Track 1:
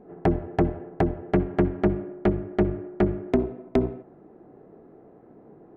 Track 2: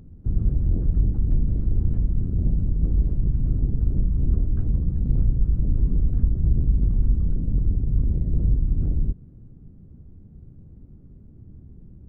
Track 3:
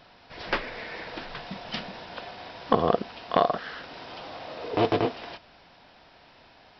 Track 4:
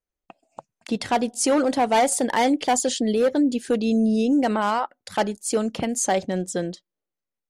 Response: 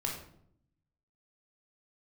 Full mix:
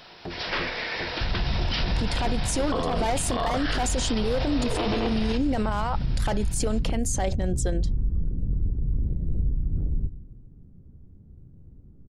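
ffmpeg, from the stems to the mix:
-filter_complex "[0:a]volume=0.168[s0];[1:a]adelay=950,volume=0.531,asplit=2[s1][s2];[s2]volume=0.178[s3];[2:a]dynaudnorm=f=250:g=11:m=1.58,highshelf=f=2200:g=9.5,volume=1.19,asplit=2[s4][s5];[s5]volume=0.224[s6];[3:a]dynaudnorm=f=260:g=11:m=3.76,alimiter=limit=0.251:level=0:latency=1,adelay=1100,volume=0.631[s7];[4:a]atrim=start_sample=2205[s8];[s3][s6]amix=inputs=2:normalize=0[s9];[s9][s8]afir=irnorm=-1:irlink=0[s10];[s0][s1][s4][s7][s10]amix=inputs=5:normalize=0,alimiter=limit=0.141:level=0:latency=1:release=26"

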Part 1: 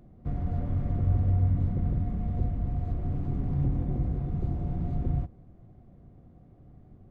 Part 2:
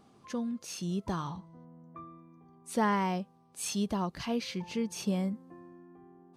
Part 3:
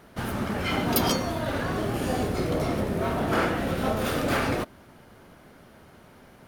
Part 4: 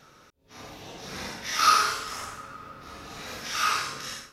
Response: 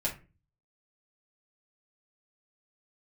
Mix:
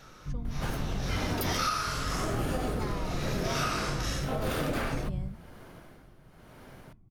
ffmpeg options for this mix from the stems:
-filter_complex "[0:a]aecho=1:1:0.9:0.74,volume=0.15,asplit=2[s0][s1];[s1]volume=0.668[s2];[1:a]volume=0.282[s3];[2:a]alimiter=limit=0.133:level=0:latency=1:release=126,tremolo=f=0.96:d=0.75,adelay=450,volume=1.06,asplit=2[s4][s5];[s5]volume=0.075[s6];[3:a]volume=1.19[s7];[4:a]atrim=start_sample=2205[s8];[s2][s6]amix=inputs=2:normalize=0[s9];[s9][s8]afir=irnorm=-1:irlink=0[s10];[s0][s3][s4][s7][s10]amix=inputs=5:normalize=0,acompressor=threshold=0.0501:ratio=12"

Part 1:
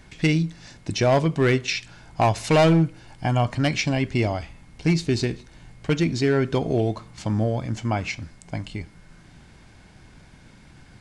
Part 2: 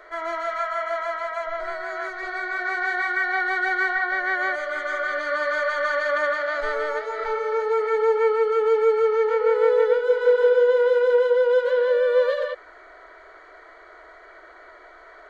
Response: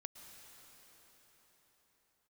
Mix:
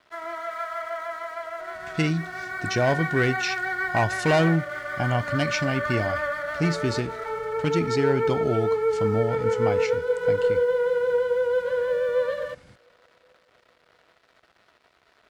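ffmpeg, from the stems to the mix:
-filter_complex "[0:a]adelay=1750,volume=0.668[s0];[1:a]lowpass=3600,aeval=exprs='sgn(val(0))*max(abs(val(0))-0.00562,0)':c=same,volume=0.596,asplit=2[s1][s2];[s2]volume=0.0891[s3];[2:a]atrim=start_sample=2205[s4];[s3][s4]afir=irnorm=-1:irlink=0[s5];[s0][s1][s5]amix=inputs=3:normalize=0,highpass=49"

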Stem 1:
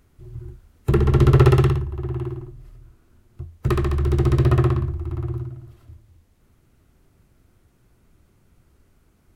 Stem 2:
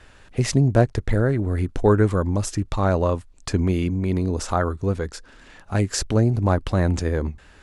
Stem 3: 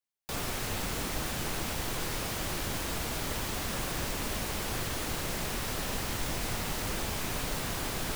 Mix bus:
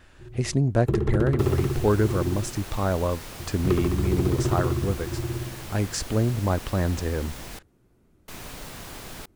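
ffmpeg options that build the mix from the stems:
-filter_complex "[0:a]equalizer=f=330:t=o:w=2.3:g=8.5,acompressor=threshold=0.224:ratio=6,volume=0.447[s0];[1:a]volume=0.596[s1];[2:a]adelay=1100,volume=0.531,asplit=3[s2][s3][s4];[s2]atrim=end=7.59,asetpts=PTS-STARTPTS,afade=t=out:st=7.586:d=0.004:c=hsin[s5];[s3]atrim=start=7.59:end=8.28,asetpts=PTS-STARTPTS,volume=0[s6];[s4]atrim=start=8.28,asetpts=PTS-STARTPTS,afade=t=in:d=0.004:c=hsin[s7];[s5][s6][s7]concat=n=3:v=0:a=1[s8];[s0][s1][s8]amix=inputs=3:normalize=0"

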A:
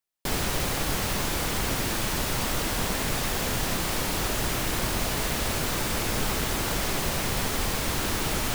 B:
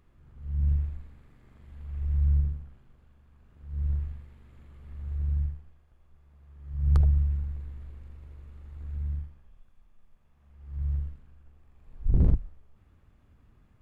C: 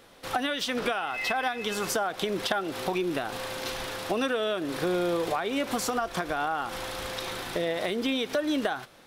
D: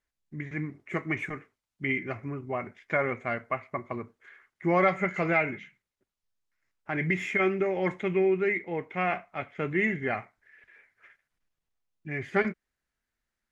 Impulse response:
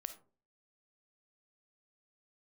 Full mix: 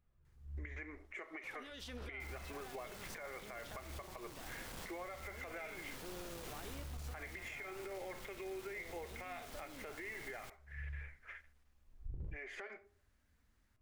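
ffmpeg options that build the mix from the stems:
-filter_complex "[0:a]adelay=1950,volume=0.447,asplit=2[s0][s1];[s1]volume=0.0794[s2];[1:a]flanger=delay=1.3:depth=2.9:regen=-40:speed=0.56:shape=triangular,volume=0.2,asplit=2[s3][s4];[s4]volume=0.376[s5];[2:a]adelay=1200,volume=0.282,asplit=2[s6][s7];[s7]volume=0.224[s8];[3:a]highpass=f=410:w=0.5412,highpass=f=410:w=1.3066,acompressor=threshold=0.0224:ratio=3,adelay=250,volume=1.26,asplit=2[s9][s10];[s10]volume=0.501[s11];[s3][s9]amix=inputs=2:normalize=0,acompressor=threshold=0.0126:ratio=6,volume=1[s12];[s0][s6]amix=inputs=2:normalize=0,aeval=exprs='(tanh(35.5*val(0)+0.8)-tanh(0.8))/35.5':c=same,alimiter=level_in=5.31:limit=0.0631:level=0:latency=1:release=22,volume=0.188,volume=1[s13];[4:a]atrim=start_sample=2205[s14];[s2][s5][s8][s11]amix=inputs=4:normalize=0[s15];[s15][s14]afir=irnorm=-1:irlink=0[s16];[s12][s13][s16]amix=inputs=3:normalize=0,alimiter=level_in=4.47:limit=0.0631:level=0:latency=1:release=357,volume=0.224"

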